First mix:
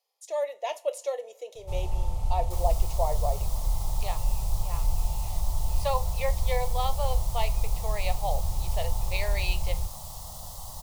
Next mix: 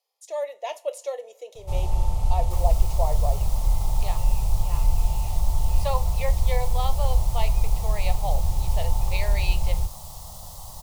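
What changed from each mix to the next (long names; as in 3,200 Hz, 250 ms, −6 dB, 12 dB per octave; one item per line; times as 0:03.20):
first sound +5.5 dB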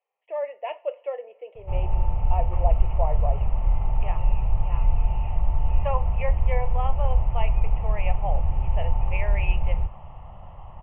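master: add Butterworth low-pass 2,900 Hz 96 dB per octave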